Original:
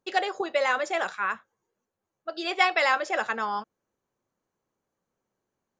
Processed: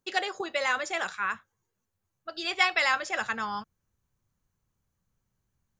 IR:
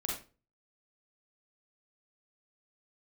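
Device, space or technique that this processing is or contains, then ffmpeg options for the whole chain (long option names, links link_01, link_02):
smiley-face EQ: -af "lowshelf=frequency=180:gain=3.5,equalizer=frequency=580:width_type=o:width=1.6:gain=-6.5,highshelf=frequency=6800:gain=6,asubboost=boost=7:cutoff=120"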